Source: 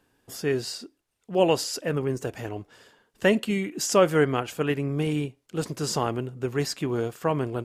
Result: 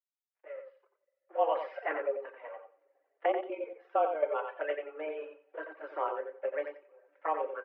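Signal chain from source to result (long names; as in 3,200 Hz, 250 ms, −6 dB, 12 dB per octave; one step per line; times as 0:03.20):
fade in at the beginning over 2.04 s
comb filter 5 ms, depth 52%
flanger swept by the level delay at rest 7 ms, full sweep at −20.5 dBFS
dynamic equaliser 1,100 Hz, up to +4 dB, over −41 dBFS, Q 1.4
0:01.55–0:01.97: leveller curve on the samples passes 3
dead-zone distortion −48 dBFS
0:06.67–0:07.13: gate with flip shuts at −25 dBFS, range −26 dB
coupled-rooms reverb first 0.52 s, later 2.2 s, from −18 dB, DRR 4.5 dB
reverb reduction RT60 0.72 s
single-sideband voice off tune +150 Hz 250–2,200 Hz
0:03.25–0:04.23: output level in coarse steps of 10 dB
on a send: repeating echo 89 ms, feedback 17%, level −7 dB
on the sum: level −5.5 dB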